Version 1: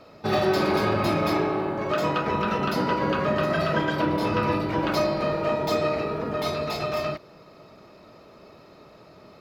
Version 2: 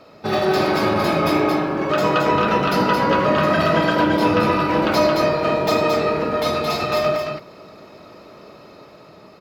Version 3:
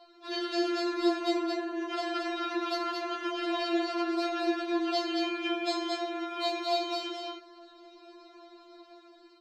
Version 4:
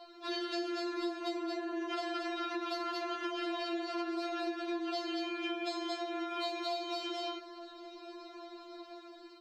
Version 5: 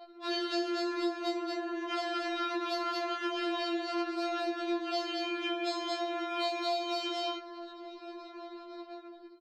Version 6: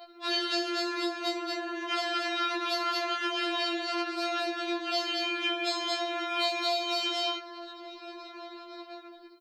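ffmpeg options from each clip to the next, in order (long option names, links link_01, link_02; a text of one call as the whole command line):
ffmpeg -i in.wav -filter_complex "[0:a]lowshelf=frequency=78:gain=-8.5,dynaudnorm=framelen=540:gausssize=5:maxgain=3dB,asplit=2[link_01][link_02];[link_02]aecho=0:1:78.72|221.6:0.251|0.631[link_03];[link_01][link_03]amix=inputs=2:normalize=0,volume=3dB" out.wav
ffmpeg -i in.wav -af "lowpass=frequency=8100:width=0.5412,lowpass=frequency=8100:width=1.3066,afftfilt=real='re*4*eq(mod(b,16),0)':imag='im*4*eq(mod(b,16),0)':win_size=2048:overlap=0.75,volume=-6.5dB" out.wav
ffmpeg -i in.wav -af "acompressor=threshold=-38dB:ratio=6,volume=3.5dB" out.wav
ffmpeg -i in.wav -filter_complex "[0:a]anlmdn=0.00251,asplit=5[link_01][link_02][link_03][link_04][link_05];[link_02]adelay=214,afreqshift=140,volume=-19dB[link_06];[link_03]adelay=428,afreqshift=280,volume=-24.7dB[link_07];[link_04]adelay=642,afreqshift=420,volume=-30.4dB[link_08];[link_05]adelay=856,afreqshift=560,volume=-36dB[link_09];[link_01][link_06][link_07][link_08][link_09]amix=inputs=5:normalize=0,afftfilt=real='re*4*eq(mod(b,16),0)':imag='im*4*eq(mod(b,16),0)':win_size=2048:overlap=0.75,volume=-5dB" out.wav
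ffmpeg -i in.wav -af "bass=frequency=250:gain=-6,treble=frequency=4000:gain=-10,crystalizer=i=6.5:c=0" out.wav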